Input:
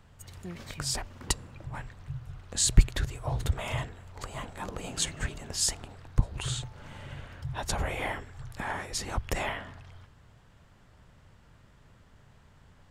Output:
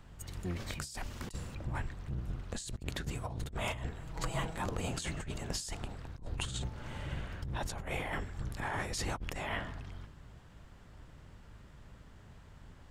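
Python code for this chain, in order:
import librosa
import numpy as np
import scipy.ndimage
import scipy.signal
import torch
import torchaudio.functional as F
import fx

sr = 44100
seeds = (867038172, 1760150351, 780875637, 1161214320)

y = fx.octave_divider(x, sr, octaves=1, level_db=1.0)
y = fx.high_shelf(y, sr, hz=2800.0, db=11.5, at=(0.79, 1.55))
y = fx.highpass(y, sr, hz=56.0, slope=12, at=(2.76, 3.39))
y = fx.over_compress(y, sr, threshold_db=-35.0, ratio=-1.0)
y = fx.comb(y, sr, ms=6.2, depth=0.71, at=(4.01, 4.57))
y = y * librosa.db_to_amplitude(-3.5)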